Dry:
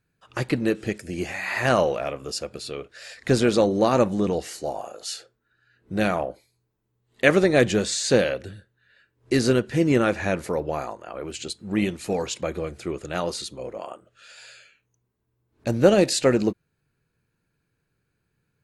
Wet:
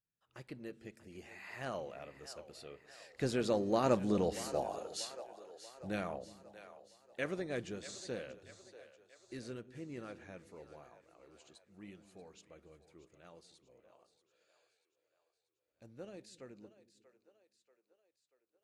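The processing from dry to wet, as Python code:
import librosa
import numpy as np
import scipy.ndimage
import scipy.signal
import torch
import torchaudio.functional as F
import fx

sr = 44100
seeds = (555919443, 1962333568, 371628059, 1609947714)

y = fx.doppler_pass(x, sr, speed_mps=8, closest_m=4.5, pass_at_s=4.52)
y = fx.echo_split(y, sr, split_hz=390.0, low_ms=181, high_ms=636, feedback_pct=52, wet_db=-14.0)
y = y * 10.0 ** (-7.0 / 20.0)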